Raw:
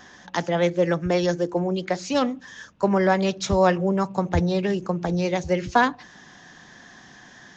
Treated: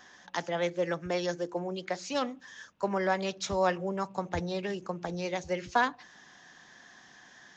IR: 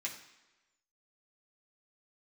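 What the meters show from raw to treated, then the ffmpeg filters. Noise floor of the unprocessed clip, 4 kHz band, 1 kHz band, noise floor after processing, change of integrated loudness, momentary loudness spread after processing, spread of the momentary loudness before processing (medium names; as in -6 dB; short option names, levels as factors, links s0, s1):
-49 dBFS, -6.0 dB, -7.5 dB, -56 dBFS, -9.0 dB, 8 LU, 7 LU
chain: -af "lowshelf=f=330:g=-9.5,volume=0.501"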